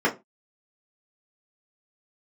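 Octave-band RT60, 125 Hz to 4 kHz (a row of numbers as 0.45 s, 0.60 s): 0.30 s, 0.25 s, 0.25 s, 0.20 s, 0.20 s, 0.15 s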